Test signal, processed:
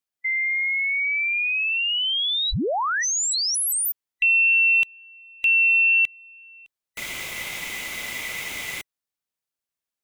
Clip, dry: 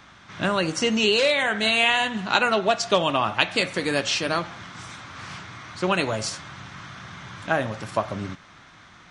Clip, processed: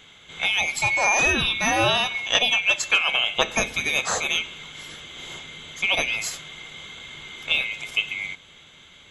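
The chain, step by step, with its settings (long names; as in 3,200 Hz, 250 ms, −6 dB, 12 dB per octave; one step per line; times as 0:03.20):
neighbouring bands swapped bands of 2,000 Hz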